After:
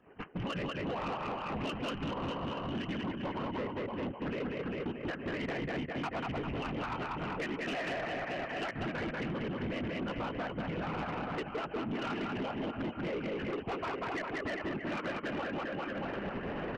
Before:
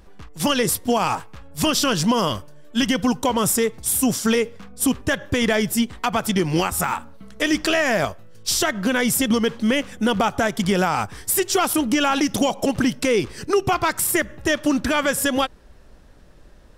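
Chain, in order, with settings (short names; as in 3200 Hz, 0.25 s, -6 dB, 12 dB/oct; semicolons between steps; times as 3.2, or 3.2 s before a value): recorder AGC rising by 40 dB/s; in parallel at -3 dB: limiter -14 dBFS, peak gain reduction 8.5 dB; on the sum: FFT band-pass 120–3100 Hz; gate -29 dBFS, range -8 dB; whisperiser; transient shaper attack +2 dB, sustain -10 dB; on a send: reverse bouncing-ball echo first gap 0.19 s, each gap 1.1×, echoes 5; on the sum: compressor 4:1, threshold -25 dBFS, peak gain reduction 15 dB; soft clip -25.5 dBFS, distortion -11 dB; gain -6 dB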